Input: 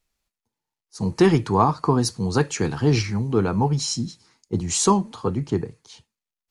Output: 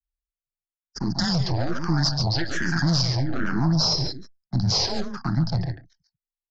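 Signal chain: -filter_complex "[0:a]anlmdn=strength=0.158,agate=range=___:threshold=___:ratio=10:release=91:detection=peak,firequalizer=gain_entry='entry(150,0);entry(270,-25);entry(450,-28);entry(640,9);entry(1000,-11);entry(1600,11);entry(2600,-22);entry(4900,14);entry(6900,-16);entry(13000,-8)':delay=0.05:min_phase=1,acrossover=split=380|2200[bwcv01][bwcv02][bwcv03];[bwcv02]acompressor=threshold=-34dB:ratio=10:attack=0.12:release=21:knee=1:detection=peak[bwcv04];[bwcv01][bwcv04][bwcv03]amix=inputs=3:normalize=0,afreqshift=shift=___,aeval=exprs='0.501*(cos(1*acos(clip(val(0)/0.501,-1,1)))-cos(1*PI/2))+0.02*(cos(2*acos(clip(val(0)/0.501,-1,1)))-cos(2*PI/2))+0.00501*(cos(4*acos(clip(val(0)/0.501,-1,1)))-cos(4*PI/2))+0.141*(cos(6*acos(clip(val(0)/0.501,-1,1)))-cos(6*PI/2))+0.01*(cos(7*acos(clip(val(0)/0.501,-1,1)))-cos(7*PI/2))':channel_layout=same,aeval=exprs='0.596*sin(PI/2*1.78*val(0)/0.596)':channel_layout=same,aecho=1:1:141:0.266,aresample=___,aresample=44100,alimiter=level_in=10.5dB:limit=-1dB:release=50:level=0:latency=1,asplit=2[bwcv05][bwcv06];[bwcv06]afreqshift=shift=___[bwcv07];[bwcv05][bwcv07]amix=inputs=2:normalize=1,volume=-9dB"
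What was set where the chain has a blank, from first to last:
-16dB, -41dB, 20, 16000, -1.2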